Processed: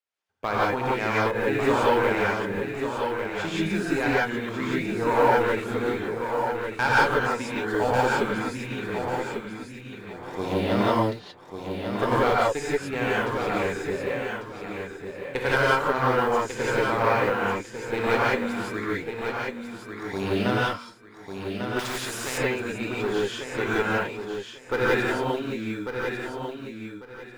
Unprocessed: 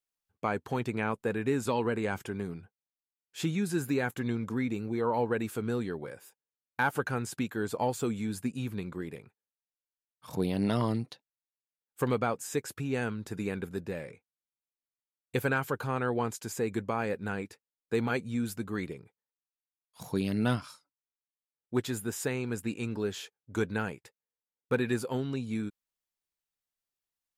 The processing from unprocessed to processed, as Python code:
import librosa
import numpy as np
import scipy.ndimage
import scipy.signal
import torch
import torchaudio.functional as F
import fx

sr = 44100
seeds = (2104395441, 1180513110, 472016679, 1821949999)

p1 = scipy.signal.sosfilt(scipy.signal.butter(2, 7200.0, 'lowpass', fs=sr, output='sos'), x)
p2 = fx.bass_treble(p1, sr, bass_db=-15, treble_db=-8)
p3 = fx.cheby_harmonics(p2, sr, harmonics=(6, 8), levels_db=(-17, -27), full_scale_db=-16.0)
p4 = fx.echo_feedback(p3, sr, ms=1146, feedback_pct=24, wet_db=-6.5)
p5 = fx.quant_float(p4, sr, bits=2)
p6 = p4 + (p5 * 10.0 ** (-10.0 / 20.0))
p7 = fx.rev_gated(p6, sr, seeds[0], gate_ms=200, shape='rising', drr_db=-7.0)
y = fx.spectral_comp(p7, sr, ratio=2.0, at=(21.79, 22.38))